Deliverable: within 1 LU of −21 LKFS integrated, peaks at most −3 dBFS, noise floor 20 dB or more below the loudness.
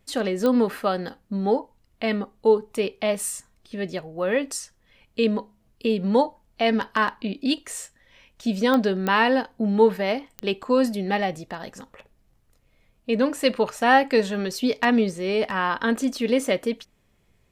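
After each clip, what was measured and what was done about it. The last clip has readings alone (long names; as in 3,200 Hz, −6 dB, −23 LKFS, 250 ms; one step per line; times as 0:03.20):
number of clicks 4; integrated loudness −23.5 LKFS; sample peak −6.5 dBFS; target loudness −21.0 LKFS
→ click removal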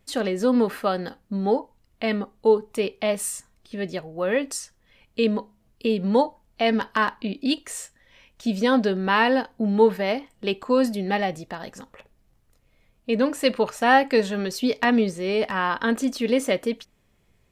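number of clicks 0; integrated loudness −23.5 LKFS; sample peak −6.5 dBFS; target loudness −21.0 LKFS
→ level +2.5 dB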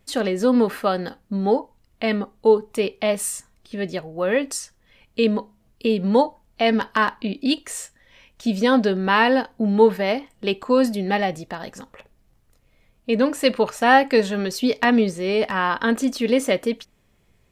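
integrated loudness −21.0 LKFS; sample peak −4.0 dBFS; background noise floor −62 dBFS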